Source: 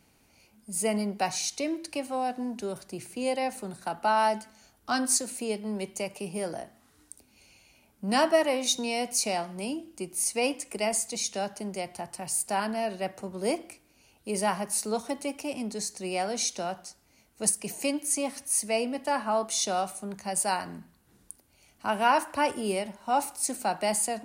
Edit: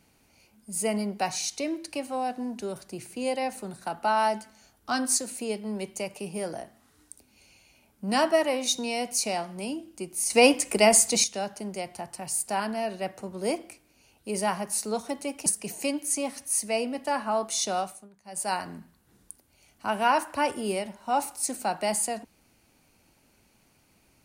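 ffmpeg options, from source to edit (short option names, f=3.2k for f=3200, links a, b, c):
-filter_complex "[0:a]asplit=6[a][b][c][d][e][f];[a]atrim=end=10.302[g];[b]atrim=start=10.298:end=11.242,asetpts=PTS-STARTPTS,volume=9.5dB[h];[c]atrim=start=11.238:end=15.462[i];[d]atrim=start=17.458:end=20.09,asetpts=PTS-STARTPTS,afade=t=out:st=2.332:d=0.3:silence=0.112202[j];[e]atrim=start=20.09:end=20.24,asetpts=PTS-STARTPTS,volume=-19dB[k];[f]atrim=start=20.24,asetpts=PTS-STARTPTS,afade=t=in:d=0.3:silence=0.112202[l];[g][h]acrossfade=d=0.004:c1=hsin:c2=hsin[m];[m][i]acrossfade=d=0.004:c1=hsin:c2=hsin[n];[j][k][l]concat=n=3:v=0:a=1[o];[n][o]acrossfade=d=0.004:c1=hsin:c2=hsin"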